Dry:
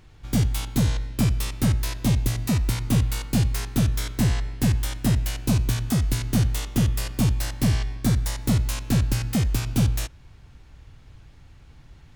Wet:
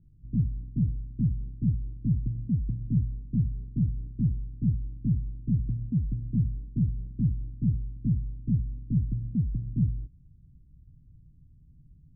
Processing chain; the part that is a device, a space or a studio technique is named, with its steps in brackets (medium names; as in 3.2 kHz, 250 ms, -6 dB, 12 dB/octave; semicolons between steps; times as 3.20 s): the neighbour's flat through the wall (low-pass 260 Hz 24 dB/octave; peaking EQ 160 Hz +7 dB 0.62 oct); trim -7.5 dB